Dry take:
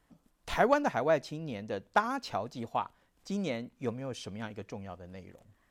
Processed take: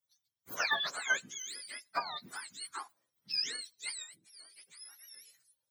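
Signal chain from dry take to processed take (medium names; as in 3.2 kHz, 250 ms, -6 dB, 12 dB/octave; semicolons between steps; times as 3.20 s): spectrum inverted on a logarithmic axis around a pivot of 1 kHz; 4.02–5.19 s: compression 16:1, threshold -47 dBFS, peak gain reduction 14 dB; tilt EQ +4.5 dB/octave; three bands expanded up and down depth 40%; trim -7.5 dB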